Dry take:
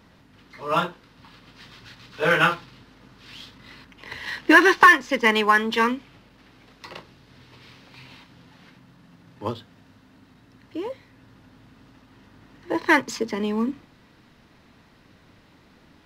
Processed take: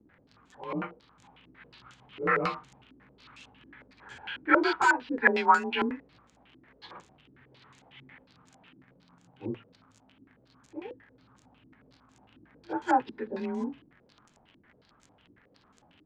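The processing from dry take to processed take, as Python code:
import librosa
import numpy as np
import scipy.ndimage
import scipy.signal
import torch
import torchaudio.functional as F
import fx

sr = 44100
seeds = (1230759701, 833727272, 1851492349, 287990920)

y = fx.partial_stretch(x, sr, pct=92)
y = fx.dmg_crackle(y, sr, seeds[0], per_s=49.0, level_db=-36.0)
y = fx.filter_held_lowpass(y, sr, hz=11.0, low_hz=330.0, high_hz=7000.0)
y = y * 10.0 ** (-8.0 / 20.0)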